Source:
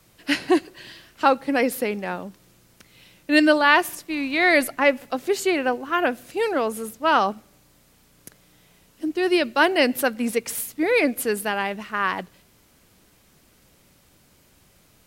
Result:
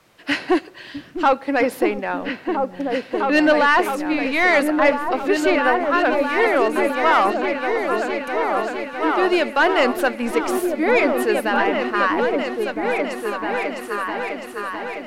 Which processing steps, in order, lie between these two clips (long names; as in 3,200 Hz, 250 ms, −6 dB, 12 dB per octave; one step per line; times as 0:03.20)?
mid-hump overdrive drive 17 dB, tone 1,600 Hz, clips at −2 dBFS
echo whose low-pass opens from repeat to repeat 657 ms, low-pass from 200 Hz, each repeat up 2 octaves, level 0 dB
level −2.5 dB